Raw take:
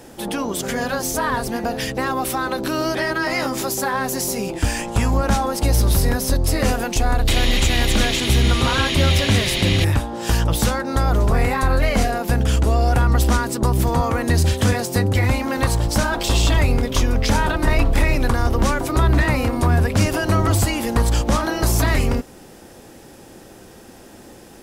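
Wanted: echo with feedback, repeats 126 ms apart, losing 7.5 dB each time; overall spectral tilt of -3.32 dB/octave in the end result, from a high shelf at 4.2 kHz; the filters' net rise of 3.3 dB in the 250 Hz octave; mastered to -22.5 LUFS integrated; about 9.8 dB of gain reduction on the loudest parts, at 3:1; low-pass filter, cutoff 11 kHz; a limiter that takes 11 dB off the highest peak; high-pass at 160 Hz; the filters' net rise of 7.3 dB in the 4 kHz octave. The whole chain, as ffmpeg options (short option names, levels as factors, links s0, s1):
-af "highpass=160,lowpass=11000,equalizer=f=250:t=o:g=5,equalizer=f=4000:t=o:g=7,highshelf=f=4200:g=4,acompressor=threshold=0.0501:ratio=3,alimiter=limit=0.0841:level=0:latency=1,aecho=1:1:126|252|378|504|630:0.422|0.177|0.0744|0.0312|0.0131,volume=2.24"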